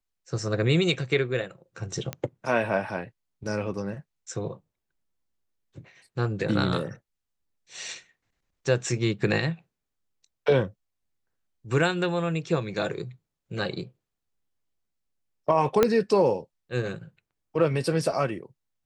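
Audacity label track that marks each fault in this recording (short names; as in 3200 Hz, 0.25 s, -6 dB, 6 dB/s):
2.130000	2.130000	pop -15 dBFS
15.830000	15.830000	pop -6 dBFS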